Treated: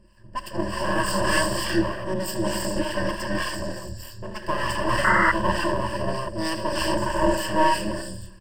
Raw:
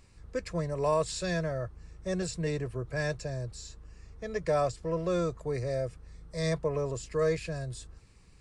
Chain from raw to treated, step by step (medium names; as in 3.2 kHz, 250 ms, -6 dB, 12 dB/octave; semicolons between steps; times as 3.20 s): gated-style reverb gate 470 ms rising, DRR -4 dB; harmonic tremolo 3.3 Hz, depth 70%, crossover 550 Hz; feedback delay 81 ms, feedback 57%, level -16 dB; full-wave rectifier; rippled EQ curve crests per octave 1.3, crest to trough 18 dB; painted sound noise, 5.04–5.32 s, 900–2100 Hz -25 dBFS; tape noise reduction on one side only decoder only; trim +5.5 dB